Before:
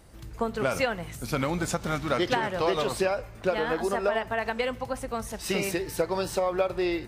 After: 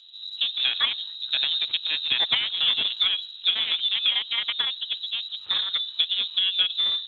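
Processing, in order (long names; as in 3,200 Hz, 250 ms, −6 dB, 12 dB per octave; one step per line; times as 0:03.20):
adaptive Wiener filter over 25 samples
voice inversion scrambler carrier 3,900 Hz
level +3 dB
Speex 36 kbit/s 32,000 Hz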